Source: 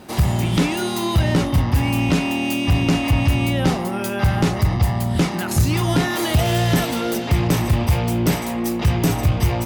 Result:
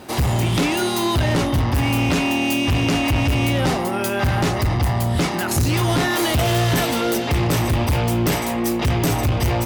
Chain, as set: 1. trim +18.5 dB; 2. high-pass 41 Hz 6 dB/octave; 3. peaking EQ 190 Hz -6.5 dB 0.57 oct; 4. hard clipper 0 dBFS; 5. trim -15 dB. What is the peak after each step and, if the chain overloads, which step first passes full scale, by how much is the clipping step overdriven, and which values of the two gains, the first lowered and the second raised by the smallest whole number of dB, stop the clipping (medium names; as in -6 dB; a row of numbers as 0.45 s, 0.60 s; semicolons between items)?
+9.5 dBFS, +11.0 dBFS, +10.0 dBFS, 0.0 dBFS, -15.0 dBFS; step 1, 10.0 dB; step 1 +8.5 dB, step 5 -5 dB